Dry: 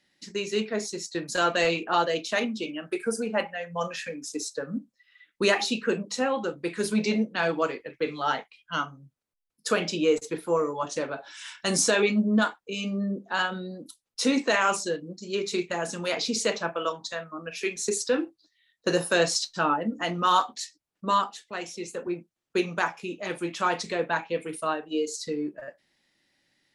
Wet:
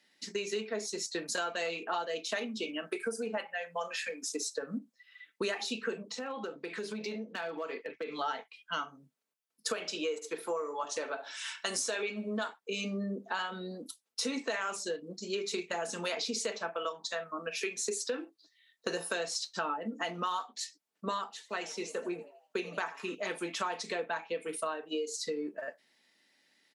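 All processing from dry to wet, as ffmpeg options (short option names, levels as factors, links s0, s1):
-filter_complex "[0:a]asettb=1/sr,asplit=3[s0][s1][s2];[s0]atrim=end=3.374[s3];[s1]atrim=start=3.37:end=4.23,asetpts=PTS-STARTPTS,afade=t=in:d=0.004:c=qsin,afade=t=out:st=0.856:d=0.004:c=qsin,highpass=f=550:p=1,bandreject=f=5900:w=10[s4];[s2]atrim=start=4.226[s5];[s3][s4]acrossfade=d=0.004:c1=hsin:c2=qsin[s6];[s6][s5]acrossfade=d=0.004:c1=qsin:c2=hsin,asettb=1/sr,asplit=3[s7][s8][s9];[s7]atrim=end=6.104[s10];[s8]atrim=start=6.1:end=8.19,asetpts=PTS-STARTPTS,afade=t=in:d=0.004:c=qsin,afade=t=out:st=2.086:d=0.004:c=qsin,acompressor=threshold=0.02:ratio=8:attack=3.2:release=140:knee=1:detection=peak,highpass=130,lowpass=5700,asoftclip=type=hard:threshold=0.0316[s11];[s9]atrim=start=8.186[s12];[s10][s11]acrossfade=d=0.004:c1=hsin:c2=qsin[s13];[s13][s12]acrossfade=d=0.004:c1=qsin:c2=hsin,asettb=1/sr,asplit=3[s14][s15][s16];[s14]atrim=end=9.734[s17];[s15]atrim=start=9.73:end=12.49,asetpts=PTS-STARTPTS,afade=t=in:d=0.004:c=qsin,afade=t=out:st=2.756:d=0.004:c=qsin,highpass=f=410:p=1,asplit=2[s18][s19];[s19]adelay=72,lowpass=f=3700:p=1,volume=0.133,asplit=2[s20][s21];[s21]adelay=72,lowpass=f=3700:p=1,volume=0.32,asplit=2[s22][s23];[s23]adelay=72,lowpass=f=3700:p=1,volume=0.32[s24];[s18][s20][s22][s24]amix=inputs=4:normalize=0,atrim=end_sample=121716[s25];[s16]atrim=start=12.486[s26];[s17][s25]acrossfade=d=0.004:c1=hsin:c2=qsin[s27];[s27][s26]acrossfade=d=0.004:c1=qsin:c2=hsin,asettb=1/sr,asplit=3[s28][s29][s30];[s28]atrim=end=21.324[s31];[s29]atrim=start=21.32:end=23.15,asetpts=PTS-STARTPTS,afade=t=in:d=0.004:c=qsin,afade=t=out:st=1.826:d=0.004:c=qsin,asplit=5[s32][s33][s34][s35][s36];[s33]adelay=82,afreqshift=110,volume=0.119[s37];[s34]adelay=164,afreqshift=220,volume=0.0525[s38];[s35]adelay=246,afreqshift=330,volume=0.0229[s39];[s36]adelay=328,afreqshift=440,volume=0.0101[s40];[s32][s37][s38][s39][s40]amix=inputs=5:normalize=0,atrim=end_sample=80703,acrossover=split=6100[s41][s42];[s42]acompressor=threshold=0.00282:ratio=4:attack=1:release=60[s43];[s41][s43]amix=inputs=2:normalize=0[s44];[s30]atrim=start=23.146[s45];[s31][s44]acrossfade=d=0.004:c1=hsin:c2=qsin[s46];[s46][s45]acrossfade=d=0.004:c1=qsin:c2=hsin,highpass=280,aecho=1:1:4.5:0.34,acompressor=threshold=0.0224:ratio=6,volume=1.12"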